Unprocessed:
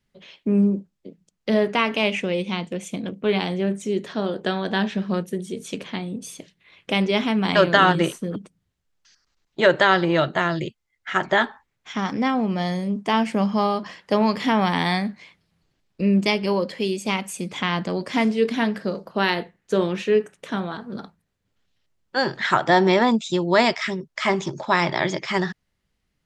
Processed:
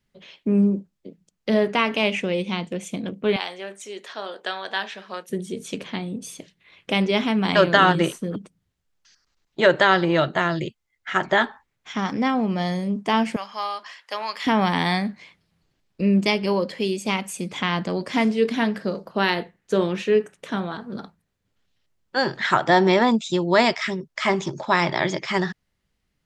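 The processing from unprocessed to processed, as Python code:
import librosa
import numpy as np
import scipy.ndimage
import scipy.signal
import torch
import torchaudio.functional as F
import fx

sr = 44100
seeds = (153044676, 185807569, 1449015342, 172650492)

y = fx.highpass(x, sr, hz=750.0, slope=12, at=(3.36, 5.3))
y = fx.highpass(y, sr, hz=1100.0, slope=12, at=(13.36, 14.47))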